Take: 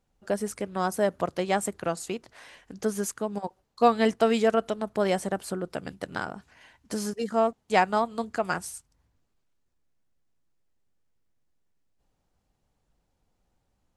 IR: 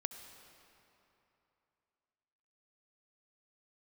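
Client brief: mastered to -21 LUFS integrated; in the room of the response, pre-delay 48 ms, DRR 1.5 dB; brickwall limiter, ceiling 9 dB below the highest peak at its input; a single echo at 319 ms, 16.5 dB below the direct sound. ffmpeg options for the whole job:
-filter_complex "[0:a]alimiter=limit=0.158:level=0:latency=1,aecho=1:1:319:0.15,asplit=2[s0][s1];[1:a]atrim=start_sample=2205,adelay=48[s2];[s1][s2]afir=irnorm=-1:irlink=0,volume=0.944[s3];[s0][s3]amix=inputs=2:normalize=0,volume=2.24"

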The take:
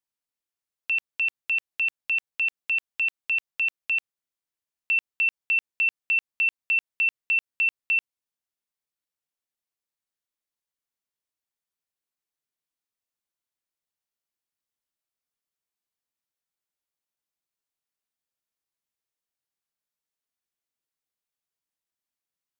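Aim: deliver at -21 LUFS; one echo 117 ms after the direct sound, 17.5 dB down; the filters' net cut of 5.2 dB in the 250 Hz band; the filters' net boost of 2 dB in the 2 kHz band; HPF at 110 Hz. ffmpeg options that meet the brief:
-af "highpass=110,equalizer=f=250:t=o:g=-7,equalizer=f=2000:t=o:g=3.5,aecho=1:1:117:0.133,volume=1.19"

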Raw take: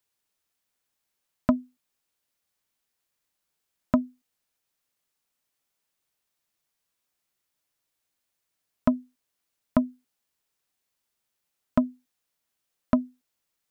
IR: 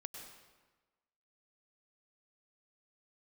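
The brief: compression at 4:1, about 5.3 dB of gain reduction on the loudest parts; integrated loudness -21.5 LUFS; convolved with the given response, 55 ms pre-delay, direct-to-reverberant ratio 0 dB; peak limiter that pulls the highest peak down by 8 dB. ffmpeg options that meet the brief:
-filter_complex "[0:a]acompressor=threshold=0.0794:ratio=4,alimiter=limit=0.15:level=0:latency=1,asplit=2[s0][s1];[1:a]atrim=start_sample=2205,adelay=55[s2];[s1][s2]afir=irnorm=-1:irlink=0,volume=1.5[s3];[s0][s3]amix=inputs=2:normalize=0,volume=5.31"

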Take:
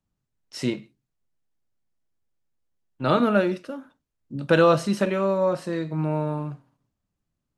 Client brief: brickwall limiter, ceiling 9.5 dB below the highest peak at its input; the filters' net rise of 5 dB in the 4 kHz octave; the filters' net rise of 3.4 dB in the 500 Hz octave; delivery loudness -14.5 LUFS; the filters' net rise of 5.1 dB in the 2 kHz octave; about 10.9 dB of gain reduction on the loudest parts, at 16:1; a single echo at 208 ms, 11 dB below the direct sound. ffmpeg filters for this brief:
-af "equalizer=f=500:t=o:g=3.5,equalizer=f=2000:t=o:g=6.5,equalizer=f=4000:t=o:g=4,acompressor=threshold=0.1:ratio=16,alimiter=limit=0.133:level=0:latency=1,aecho=1:1:208:0.282,volume=5.31"

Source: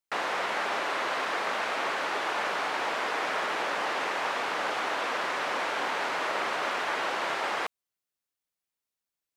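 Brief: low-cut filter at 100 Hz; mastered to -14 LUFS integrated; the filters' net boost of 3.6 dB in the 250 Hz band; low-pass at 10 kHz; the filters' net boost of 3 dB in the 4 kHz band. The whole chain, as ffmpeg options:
-af "highpass=100,lowpass=10000,equalizer=f=250:t=o:g=5,equalizer=f=4000:t=o:g=4,volume=5.31"

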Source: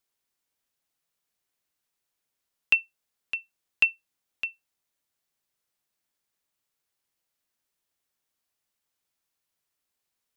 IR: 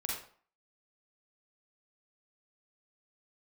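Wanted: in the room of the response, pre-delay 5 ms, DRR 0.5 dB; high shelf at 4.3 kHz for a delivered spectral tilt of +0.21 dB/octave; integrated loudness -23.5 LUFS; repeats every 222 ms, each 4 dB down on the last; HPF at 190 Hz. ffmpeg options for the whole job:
-filter_complex "[0:a]highpass=190,highshelf=f=4300:g=-5,aecho=1:1:222|444|666|888|1110|1332|1554|1776|1998:0.631|0.398|0.25|0.158|0.0994|0.0626|0.0394|0.0249|0.0157,asplit=2[s0][s1];[1:a]atrim=start_sample=2205,adelay=5[s2];[s1][s2]afir=irnorm=-1:irlink=0,volume=0.668[s3];[s0][s3]amix=inputs=2:normalize=0,volume=1.88"

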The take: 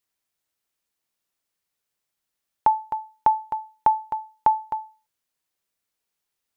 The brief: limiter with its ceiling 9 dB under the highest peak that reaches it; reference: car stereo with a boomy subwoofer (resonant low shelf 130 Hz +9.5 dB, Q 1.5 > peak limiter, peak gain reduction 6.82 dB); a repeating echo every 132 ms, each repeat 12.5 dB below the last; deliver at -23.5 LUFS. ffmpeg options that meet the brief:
-af "alimiter=limit=0.133:level=0:latency=1,lowshelf=f=130:t=q:w=1.5:g=9.5,aecho=1:1:132|264|396:0.237|0.0569|0.0137,volume=2.99,alimiter=limit=0.2:level=0:latency=1"

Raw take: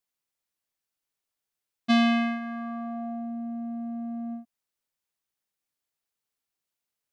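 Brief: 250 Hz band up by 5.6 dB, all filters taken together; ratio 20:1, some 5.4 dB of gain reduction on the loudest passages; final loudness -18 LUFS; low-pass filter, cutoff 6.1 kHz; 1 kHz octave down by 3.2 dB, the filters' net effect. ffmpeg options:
-af "lowpass=6100,equalizer=f=250:t=o:g=6,equalizer=f=1000:t=o:g=-6,acompressor=threshold=0.112:ratio=20,volume=2.99"

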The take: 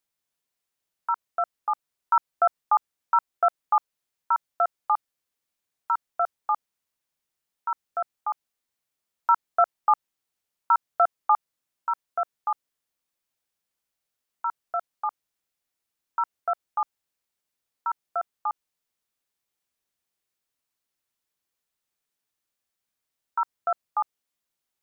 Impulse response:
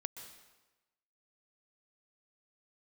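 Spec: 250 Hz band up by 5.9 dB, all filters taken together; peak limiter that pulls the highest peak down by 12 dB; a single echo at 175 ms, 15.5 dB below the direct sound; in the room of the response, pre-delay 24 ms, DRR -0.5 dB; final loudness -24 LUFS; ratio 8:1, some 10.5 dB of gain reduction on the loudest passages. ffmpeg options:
-filter_complex "[0:a]equalizer=f=250:t=o:g=8.5,acompressor=threshold=0.0501:ratio=8,alimiter=level_in=1.06:limit=0.0631:level=0:latency=1,volume=0.944,aecho=1:1:175:0.168,asplit=2[s0][s1];[1:a]atrim=start_sample=2205,adelay=24[s2];[s1][s2]afir=irnorm=-1:irlink=0,volume=1.33[s3];[s0][s3]amix=inputs=2:normalize=0,volume=3.76"

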